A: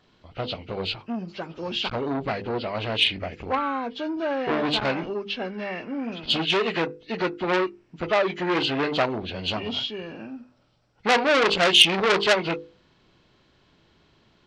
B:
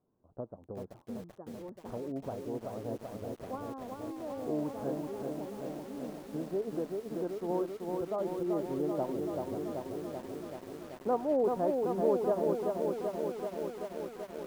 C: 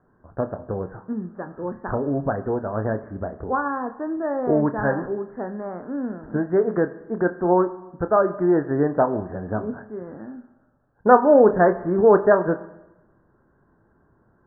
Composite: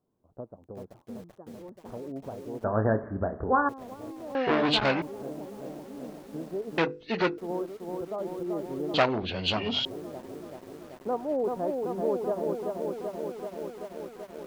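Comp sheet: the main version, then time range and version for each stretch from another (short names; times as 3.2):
B
2.64–3.69 from C
4.35–5.02 from A
6.78–7.38 from A
8.94–9.85 from A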